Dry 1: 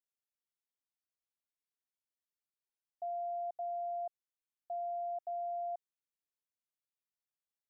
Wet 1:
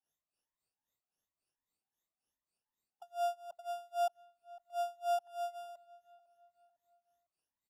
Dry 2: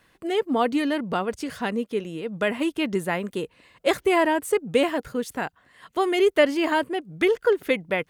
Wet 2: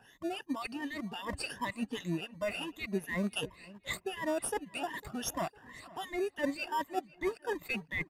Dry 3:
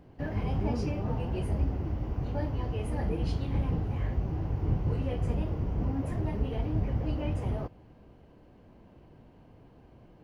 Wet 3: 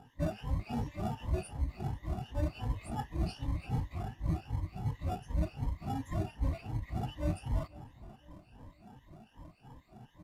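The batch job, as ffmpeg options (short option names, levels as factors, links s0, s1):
-filter_complex "[0:a]afftfilt=real='re*pow(10,22/40*sin(2*PI*(1.1*log(max(b,1)*sr/1024/100)/log(2)-(2.7)*(pts-256)/sr)))':imag='im*pow(10,22/40*sin(2*PI*(1.1*log(max(b,1)*sr/1024/100)/log(2)-(2.7)*(pts-256)/sr)))':win_size=1024:overlap=0.75,lowshelf=f=360:g=-5.5,aecho=1:1:1.1:0.65,adynamicequalizer=threshold=0.00631:dfrequency=220:dqfactor=5.2:tfrequency=220:tqfactor=5.2:attack=5:release=100:ratio=0.375:range=2:mode=cutabove:tftype=bell,areverse,acompressor=threshold=0.0355:ratio=16,areverse,acrossover=split=1600[s0][s1];[s0]aeval=exprs='val(0)*(1-1/2+1/2*cos(2*PI*3.7*n/s))':c=same[s2];[s1]aeval=exprs='val(0)*(1-1/2-1/2*cos(2*PI*3.7*n/s))':c=same[s3];[s2][s3]amix=inputs=2:normalize=0,asplit=2[s4][s5];[s5]acrusher=samples=21:mix=1:aa=0.000001,volume=0.355[s6];[s4][s6]amix=inputs=2:normalize=0,asplit=2[s7][s8];[s8]adelay=503,lowpass=f=2500:p=1,volume=0.106,asplit=2[s9][s10];[s10]adelay=503,lowpass=f=2500:p=1,volume=0.44,asplit=2[s11][s12];[s12]adelay=503,lowpass=f=2500:p=1,volume=0.44[s13];[s7][s9][s11][s13]amix=inputs=4:normalize=0,aresample=32000,aresample=44100"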